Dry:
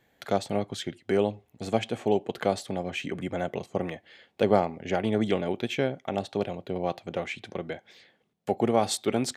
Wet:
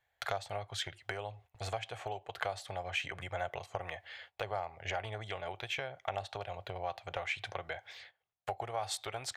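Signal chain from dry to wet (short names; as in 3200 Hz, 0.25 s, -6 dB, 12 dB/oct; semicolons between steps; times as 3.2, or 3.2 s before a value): compressor 5:1, threshold -34 dBFS, peak gain reduction 17 dB; gate -57 dBFS, range -15 dB; EQ curve 100 Hz 0 dB, 230 Hz -28 dB, 710 Hz 0 dB, 1500 Hz +1 dB, 7700 Hz -4 dB; gain +4.5 dB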